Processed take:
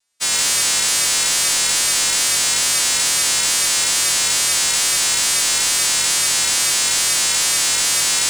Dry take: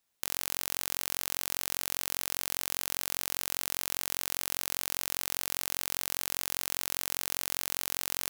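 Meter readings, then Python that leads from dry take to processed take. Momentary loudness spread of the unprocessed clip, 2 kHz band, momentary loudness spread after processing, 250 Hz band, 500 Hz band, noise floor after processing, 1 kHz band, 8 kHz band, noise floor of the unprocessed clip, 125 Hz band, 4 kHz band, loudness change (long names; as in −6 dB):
0 LU, +18.5 dB, 0 LU, +11.0 dB, +12.5 dB, −19 dBFS, +15.0 dB, +21.5 dB, −79 dBFS, +11.0 dB, +21.0 dB, +17.5 dB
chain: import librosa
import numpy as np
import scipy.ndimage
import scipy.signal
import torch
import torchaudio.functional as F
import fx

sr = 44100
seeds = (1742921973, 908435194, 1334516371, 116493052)

y = fx.freq_snap(x, sr, grid_st=2)
y = scipy.signal.sosfilt(scipy.signal.butter(4, 8600.0, 'lowpass', fs=sr, output='sos'), y)
y = fx.leveller(y, sr, passes=2)
y = fx.vibrato(y, sr, rate_hz=2.3, depth_cents=73.0)
y = y + 10.0 ** (-5.0 / 20.0) * np.pad(y, (int(99 * sr / 1000.0), 0))[:len(y)]
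y = y * 10.0 ** (6.0 / 20.0)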